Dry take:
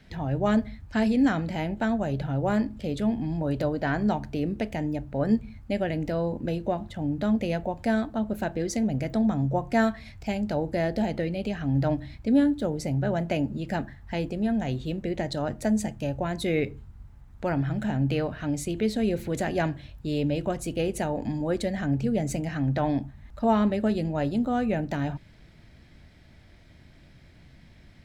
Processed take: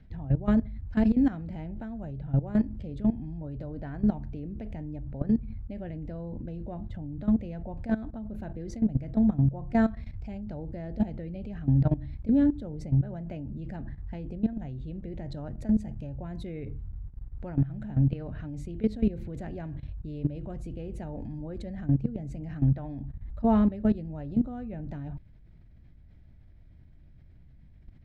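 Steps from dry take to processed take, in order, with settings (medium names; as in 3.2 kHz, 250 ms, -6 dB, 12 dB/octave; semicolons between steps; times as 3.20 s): RIAA curve playback; level held to a coarse grid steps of 16 dB; trim -4.5 dB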